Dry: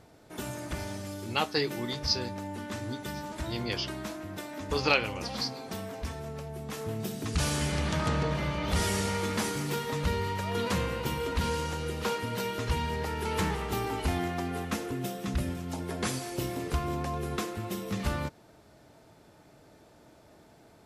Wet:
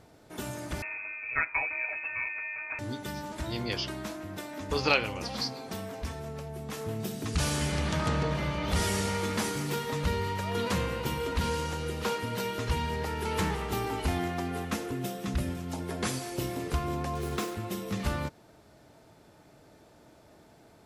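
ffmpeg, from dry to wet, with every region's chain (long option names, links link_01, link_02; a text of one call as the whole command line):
ffmpeg -i in.wav -filter_complex "[0:a]asettb=1/sr,asplit=3[link_01][link_02][link_03];[link_01]atrim=end=0.824[link_04];[link_02]atrim=start=0.82:end=2.79,asetpts=PTS-STARTPTS,afade=type=in:duration=0.004:curve=qsin,afade=type=out:start_time=1.966:duration=0.004:curve=qsin,aecho=1:1:5.8:0.6,atrim=end_sample=86877,lowpass=frequency=2300:width_type=q:width=0.5098,lowpass=frequency=2300:width_type=q:width=0.6013,lowpass=frequency=2300:width_type=q:width=0.9,lowpass=frequency=2300:width_type=q:width=2.563,afreqshift=-2700[link_05];[link_03]atrim=start=2.786[link_06];[link_04][link_05]acrossfade=duration=0.004:curve1=hsin:curve2=qsin[link_07];[link_07][link_06]acrossfade=duration=0.004:curve1=qsin:curve2=hsin,asettb=1/sr,asplit=3[link_08][link_09][link_10];[link_08]atrim=end=17.154[link_11];[link_09]atrim=start=17.15:end=17.55,asetpts=PTS-STARTPTS,afade=type=in:duration=0.004:curve=qsin,afade=type=out:start_time=0.396:duration=0.004:curve=qsin,asplit=2[link_12][link_13];[link_13]adelay=43,volume=-13dB[link_14];[link_12][link_14]amix=inputs=2:normalize=0,atrim=end_sample=17640,acrusher=bits=6:mix=0:aa=0.5[link_15];[link_10]atrim=start=17.546[link_16];[link_11][link_15]acrossfade=duration=0.004:curve1=hsin:curve2=qsin[link_17];[link_17][link_16]acrossfade=duration=0.004:curve1=qsin:curve2=hsin" out.wav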